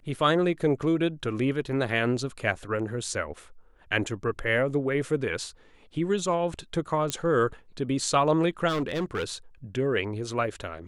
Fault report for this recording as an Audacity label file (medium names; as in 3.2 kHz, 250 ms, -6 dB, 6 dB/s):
7.100000	7.100000	pop -12 dBFS
8.680000	9.340000	clipped -24 dBFS